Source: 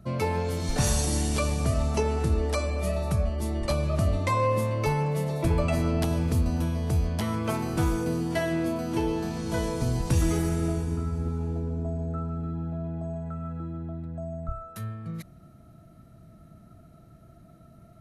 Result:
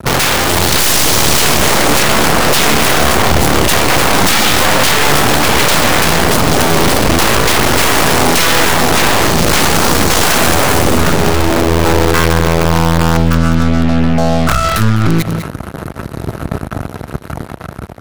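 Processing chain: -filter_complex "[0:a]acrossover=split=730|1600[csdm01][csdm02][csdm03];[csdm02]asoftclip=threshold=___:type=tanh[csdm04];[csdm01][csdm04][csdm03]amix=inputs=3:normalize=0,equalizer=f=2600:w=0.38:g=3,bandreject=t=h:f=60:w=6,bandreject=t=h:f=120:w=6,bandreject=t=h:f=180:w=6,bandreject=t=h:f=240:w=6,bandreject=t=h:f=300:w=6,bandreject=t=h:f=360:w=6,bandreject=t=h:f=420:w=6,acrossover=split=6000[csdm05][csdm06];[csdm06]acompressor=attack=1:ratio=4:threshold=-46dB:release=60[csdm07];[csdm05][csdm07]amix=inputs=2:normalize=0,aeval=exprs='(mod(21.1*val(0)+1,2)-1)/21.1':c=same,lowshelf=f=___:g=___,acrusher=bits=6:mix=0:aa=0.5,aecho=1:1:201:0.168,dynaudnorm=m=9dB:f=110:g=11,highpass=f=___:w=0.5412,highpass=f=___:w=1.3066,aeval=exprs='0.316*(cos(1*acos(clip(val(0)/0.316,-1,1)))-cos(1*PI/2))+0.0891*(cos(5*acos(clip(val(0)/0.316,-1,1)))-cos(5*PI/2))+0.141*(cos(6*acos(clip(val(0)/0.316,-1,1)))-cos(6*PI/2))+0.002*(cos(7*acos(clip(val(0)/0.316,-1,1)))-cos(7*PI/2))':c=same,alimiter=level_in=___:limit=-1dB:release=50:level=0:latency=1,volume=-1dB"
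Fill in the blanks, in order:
-39.5dB, 100, 8, 51, 51, 14.5dB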